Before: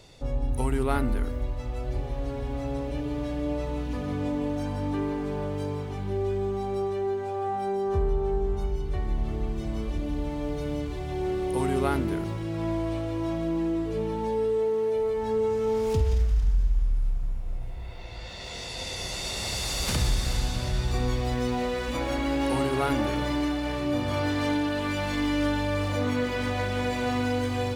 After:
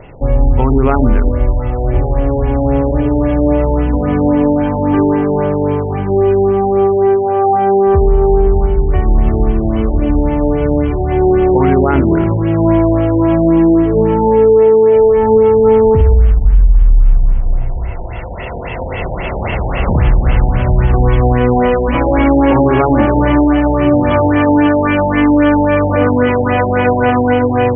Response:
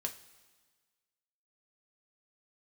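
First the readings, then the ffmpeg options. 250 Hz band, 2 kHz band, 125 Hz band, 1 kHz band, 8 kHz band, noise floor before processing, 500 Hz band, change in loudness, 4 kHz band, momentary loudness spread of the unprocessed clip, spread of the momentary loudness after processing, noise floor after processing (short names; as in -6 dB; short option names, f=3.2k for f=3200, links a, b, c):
+17.0 dB, +13.0 dB, +16.0 dB, +17.0 dB, under -40 dB, -35 dBFS, +17.5 dB, +16.5 dB, n/a, 7 LU, 7 LU, -20 dBFS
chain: -af "highshelf=f=4.1k:g=-9,bandreject=f=50:t=h:w=6,bandreject=f=100:t=h:w=6,bandreject=f=150:t=h:w=6,bandreject=f=200:t=h:w=6,bandreject=f=250:t=h:w=6,bandreject=f=300:t=h:w=6,bandreject=f=350:t=h:w=6,bandreject=f=400:t=h:w=6,bandreject=f=450:t=h:w=6,bandreject=f=500:t=h:w=6,areverse,acompressor=mode=upward:threshold=-40dB:ratio=2.5,areverse,alimiter=level_in=19.5dB:limit=-1dB:release=50:level=0:latency=1,afftfilt=real='re*lt(b*sr/1024,920*pow(3400/920,0.5+0.5*sin(2*PI*3.7*pts/sr)))':imag='im*lt(b*sr/1024,920*pow(3400/920,0.5+0.5*sin(2*PI*3.7*pts/sr)))':win_size=1024:overlap=0.75,volume=-1dB"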